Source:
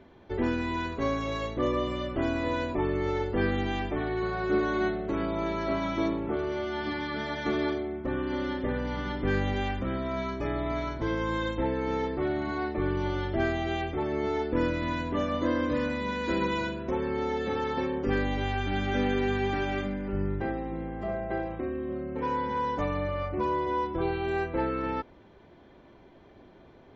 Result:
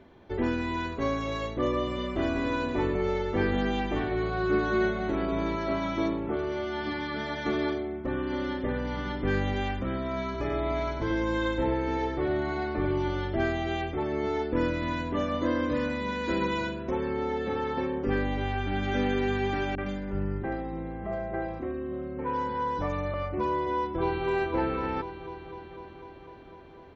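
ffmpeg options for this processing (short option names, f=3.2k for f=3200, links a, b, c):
-filter_complex "[0:a]asplit=3[a][b][c];[a]afade=t=out:st=1.97:d=0.02[d];[b]aecho=1:1:199:0.562,afade=t=in:st=1.97:d=0.02,afade=t=out:st=5.55:d=0.02[e];[c]afade=t=in:st=5.55:d=0.02[f];[d][e][f]amix=inputs=3:normalize=0,asettb=1/sr,asplit=3[g][h][i];[g]atrim=end=10.254[j];[h]atrim=start=10.25:end=13.08,asetpts=PTS-STARTPTS,afade=t=in:d=0.004:c=qsin,afade=t=out:st=2.826:d=0.004:c=qsin,aecho=1:1:94:0.562,atrim=end_sample=124803[k];[i]atrim=start=13.076[l];[j][k]acrossfade=d=0.004:c1=hsin:c2=qsin[m];[m][l]acrossfade=d=0.004:c1=qsin:c2=hsin,asettb=1/sr,asplit=3[n][o][p];[n]atrim=end=17.134[q];[o]atrim=start=17.13:end=18.83,asetpts=PTS-STARTPTS,afade=t=in:d=0.004:c=qsin,afade=t=out:st=1.696:d=0.004:c=qsin,lowpass=f=3.3k:p=1[r];[p]atrim=start=18.826[s];[q][r]acrossfade=d=0.004:c1=hsin:c2=qsin[t];[t][s]acrossfade=d=0.004:c1=qsin:c2=hsin,asettb=1/sr,asplit=3[u][v][w];[u]atrim=end=19.754[x];[v]atrim=start=19.75:end=23.14,asetpts=PTS-STARTPTS,afade=t=in:d=0.004:c=qsin,afade=t=out:st=3.386:d=0.004:c=qsin,acrossover=split=310|2700[y][z][aa];[z]adelay=30[ab];[aa]adelay=110[ac];[y][ab][ac]amix=inputs=3:normalize=0,atrim=end_sample=149499[ad];[w]atrim=start=23.136[ae];[x][ad]acrossfade=d=0.004:c1=hsin:c2=qsin[af];[af][ae]acrossfade=d=0.004:c1=qsin:c2=hsin,asplit=2[ag][ah];[ah]afade=t=in:st=23.77:d=0.01,afade=t=out:st=24.26:d=0.01,aecho=0:1:250|500|750|1000|1250|1500|1750|2000|2250|2500|2750|3000:0.501187|0.40095|0.32076|0.256608|0.205286|0.164229|0.131383|0.105107|0.0840853|0.0672682|0.0538146|0.0430517[ai];[ag][ai]amix=inputs=2:normalize=0"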